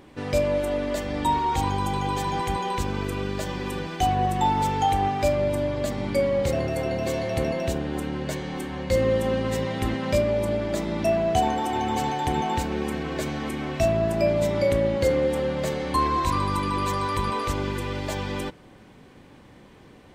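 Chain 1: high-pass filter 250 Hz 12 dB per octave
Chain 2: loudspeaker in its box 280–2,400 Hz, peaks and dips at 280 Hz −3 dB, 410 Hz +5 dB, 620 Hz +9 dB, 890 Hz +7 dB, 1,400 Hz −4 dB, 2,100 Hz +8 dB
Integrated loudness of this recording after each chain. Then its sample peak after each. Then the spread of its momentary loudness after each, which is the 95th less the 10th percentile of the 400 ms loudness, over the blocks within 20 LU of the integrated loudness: −26.5, −20.5 LKFS; −11.5, −5.5 dBFS; 8, 12 LU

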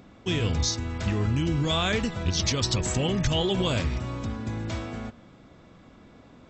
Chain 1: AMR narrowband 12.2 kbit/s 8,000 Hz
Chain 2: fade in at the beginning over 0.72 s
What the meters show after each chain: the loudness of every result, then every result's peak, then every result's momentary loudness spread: −28.5, −27.0 LKFS; −14.0, −12.0 dBFS; 9, 9 LU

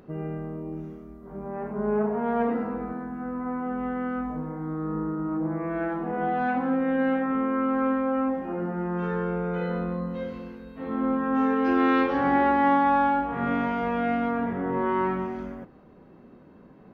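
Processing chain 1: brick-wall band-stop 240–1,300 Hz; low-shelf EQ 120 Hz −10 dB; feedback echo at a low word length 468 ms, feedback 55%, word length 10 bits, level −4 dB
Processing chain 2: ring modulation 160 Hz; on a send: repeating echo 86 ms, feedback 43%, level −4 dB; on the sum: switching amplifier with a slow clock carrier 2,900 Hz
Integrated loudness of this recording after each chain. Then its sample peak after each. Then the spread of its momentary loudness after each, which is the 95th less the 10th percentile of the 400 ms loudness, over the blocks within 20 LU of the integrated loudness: −33.5, −27.5 LKFS; −18.0, −10.5 dBFS; 13, 8 LU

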